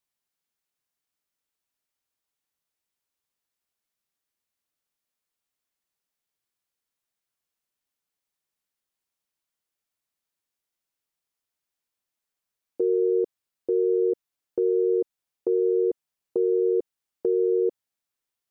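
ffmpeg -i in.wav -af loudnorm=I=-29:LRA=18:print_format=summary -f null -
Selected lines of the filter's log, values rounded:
Input Integrated:    -25.3 LUFS
Input True Peak:     -13.9 dBTP
Input LRA:             3.2 LU
Input Threshold:     -35.6 LUFS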